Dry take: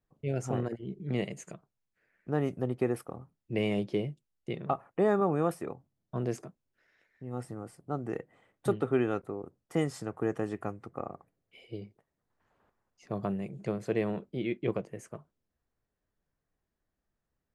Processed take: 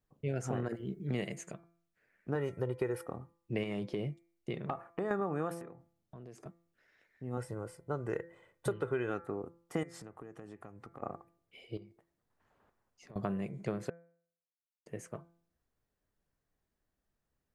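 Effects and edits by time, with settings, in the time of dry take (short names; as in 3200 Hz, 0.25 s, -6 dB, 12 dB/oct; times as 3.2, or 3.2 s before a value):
0.69–1.36 high shelf 8100 Hz +11 dB
2.35–3.03 comb 2.1 ms
3.63–5.11 compressor, threshold -30 dBFS
5.61–6.46 compressor 5:1, threshold -48 dBFS
7.37–9.1 comb 2 ms, depth 54%
9.83–11.02 compressor 8:1, threshold -45 dBFS
11.77–13.16 compressor, threshold -50 dBFS
13.9–14.86 mute
whole clip: de-hum 169.5 Hz, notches 14; dynamic EQ 1600 Hz, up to +6 dB, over -55 dBFS, Q 2.4; compressor 6:1, threshold -30 dBFS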